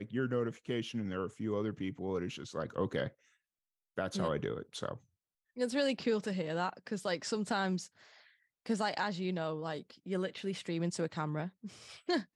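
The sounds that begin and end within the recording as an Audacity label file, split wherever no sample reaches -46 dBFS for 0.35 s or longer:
3.980000	4.970000	sound
5.570000	7.860000	sound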